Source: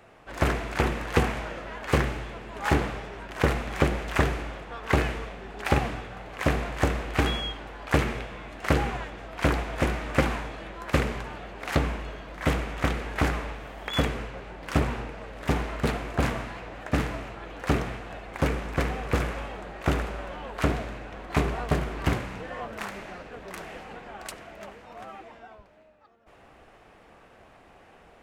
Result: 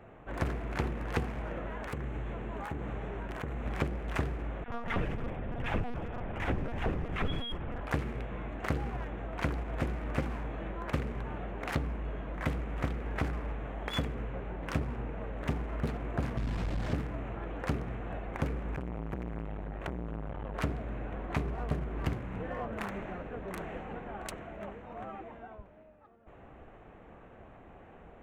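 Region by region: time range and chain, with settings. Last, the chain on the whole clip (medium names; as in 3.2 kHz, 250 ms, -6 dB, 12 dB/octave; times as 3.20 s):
1.65–3.66 s: treble shelf 7.8 kHz +9 dB + compression 8:1, threshold -34 dBFS
4.64–7.81 s: comb 4.2 ms, depth 79% + phase dispersion lows, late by 43 ms, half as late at 820 Hz + LPC vocoder at 8 kHz pitch kept
16.37–16.94 s: one-bit delta coder 32 kbps, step -24.5 dBFS + tone controls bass +10 dB, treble -2 dB + transformer saturation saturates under 460 Hz
18.76–20.54 s: bass shelf 130 Hz +5 dB + compression 5:1, threshold -25 dBFS + transformer saturation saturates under 880 Hz
whole clip: local Wiener filter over 9 samples; bass shelf 430 Hz +8 dB; compression 3:1, threshold -30 dBFS; trim -2.5 dB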